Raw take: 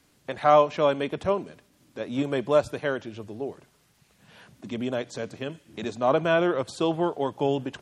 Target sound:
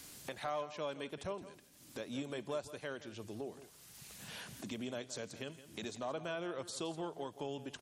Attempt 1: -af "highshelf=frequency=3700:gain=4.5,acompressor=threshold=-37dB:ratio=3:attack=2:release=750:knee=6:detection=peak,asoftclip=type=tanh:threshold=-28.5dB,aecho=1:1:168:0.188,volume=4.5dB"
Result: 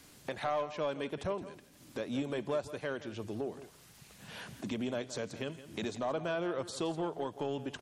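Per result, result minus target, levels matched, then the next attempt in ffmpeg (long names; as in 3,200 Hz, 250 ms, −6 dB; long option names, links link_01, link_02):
downward compressor: peak gain reduction −7 dB; 8,000 Hz band −6.5 dB
-af "highshelf=frequency=3700:gain=4.5,acompressor=threshold=-47dB:ratio=3:attack=2:release=750:knee=6:detection=peak,asoftclip=type=tanh:threshold=-28.5dB,aecho=1:1:168:0.188,volume=4.5dB"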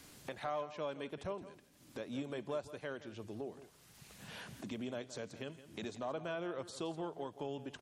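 8,000 Hz band −6.0 dB
-af "highshelf=frequency=3700:gain=13.5,acompressor=threshold=-47dB:ratio=3:attack=2:release=750:knee=6:detection=peak,asoftclip=type=tanh:threshold=-28.5dB,aecho=1:1:168:0.188,volume=4.5dB"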